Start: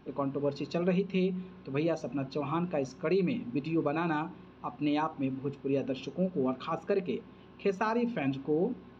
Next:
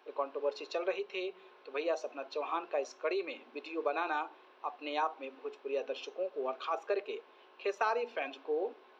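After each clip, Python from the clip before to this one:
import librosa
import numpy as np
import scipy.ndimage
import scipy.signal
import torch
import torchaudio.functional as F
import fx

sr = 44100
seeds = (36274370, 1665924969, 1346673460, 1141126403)

y = scipy.signal.sosfilt(scipy.signal.cheby2(4, 50, 170.0, 'highpass', fs=sr, output='sos'), x)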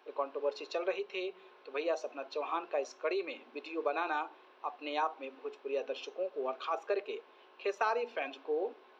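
y = x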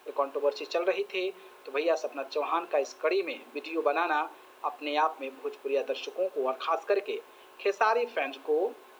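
y = fx.quant_dither(x, sr, seeds[0], bits=12, dither='triangular')
y = y * 10.0 ** (6.5 / 20.0)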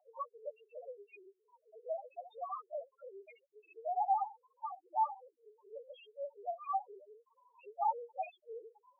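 y = fx.lpc_vocoder(x, sr, seeds[1], excitation='whisper', order=16)
y = fx.spec_topn(y, sr, count=1)
y = fx.ladder_highpass(y, sr, hz=730.0, resonance_pct=75)
y = y * 10.0 ** (7.0 / 20.0)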